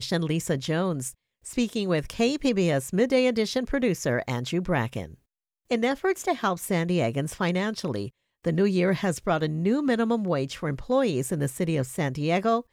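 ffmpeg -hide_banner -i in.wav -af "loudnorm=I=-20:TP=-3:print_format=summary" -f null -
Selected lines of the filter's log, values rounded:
Input Integrated:    -26.2 LUFS
Input True Peak:     -10.7 dBTP
Input LRA:             1.9 LU
Input Threshold:     -36.3 LUFS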